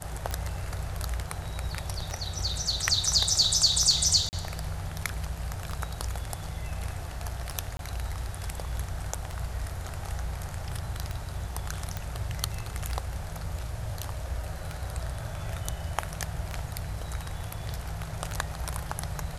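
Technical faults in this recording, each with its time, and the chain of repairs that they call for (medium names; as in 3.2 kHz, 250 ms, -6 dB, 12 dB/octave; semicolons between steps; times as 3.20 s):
tick 33 1/3 rpm -19 dBFS
4.29–4.33 s: dropout 39 ms
7.77–7.79 s: dropout 22 ms
11.97 s: pop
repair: de-click; interpolate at 4.29 s, 39 ms; interpolate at 7.77 s, 22 ms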